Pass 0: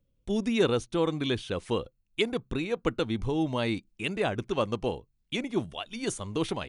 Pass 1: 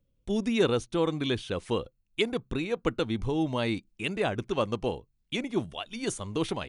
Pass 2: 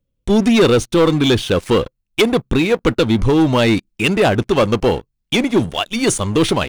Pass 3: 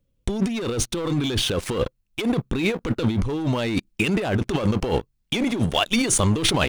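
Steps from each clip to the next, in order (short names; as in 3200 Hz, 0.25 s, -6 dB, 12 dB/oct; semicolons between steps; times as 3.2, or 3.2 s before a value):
nothing audible
sample leveller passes 3; gain +6 dB
negative-ratio compressor -20 dBFS, ratio -1; gain -2.5 dB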